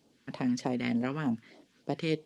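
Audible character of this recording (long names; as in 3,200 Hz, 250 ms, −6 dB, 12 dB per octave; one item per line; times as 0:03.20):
phaser sweep stages 2, 3.3 Hz, lowest notch 630–1,700 Hz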